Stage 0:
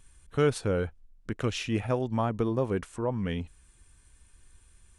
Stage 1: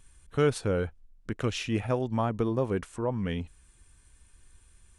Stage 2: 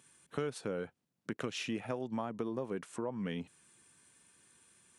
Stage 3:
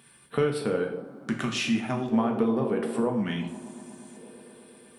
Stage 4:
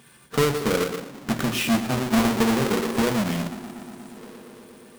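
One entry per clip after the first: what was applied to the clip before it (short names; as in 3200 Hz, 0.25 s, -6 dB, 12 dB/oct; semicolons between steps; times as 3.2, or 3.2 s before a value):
nothing audible
HPF 150 Hz 24 dB/oct; compressor 5:1, threshold -34 dBFS, peak gain reduction 13.5 dB
band-limited delay 0.119 s, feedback 83%, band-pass 420 Hz, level -10 dB; LFO notch square 0.48 Hz 470–6600 Hz; two-slope reverb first 0.5 s, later 2.3 s, from -26 dB, DRR 2 dB; gain +8.5 dB
half-waves squared off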